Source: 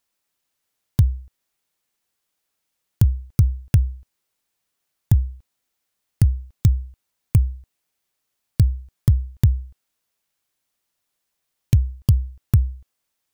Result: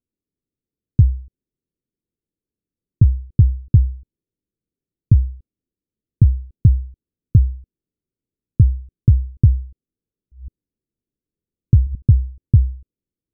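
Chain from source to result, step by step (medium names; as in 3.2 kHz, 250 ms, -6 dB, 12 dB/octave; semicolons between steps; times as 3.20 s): 9.56–11.95 s: chunks repeated in reverse 461 ms, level -7 dB; inverse Chebyshev low-pass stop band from 800 Hz, stop band 40 dB; trim +4 dB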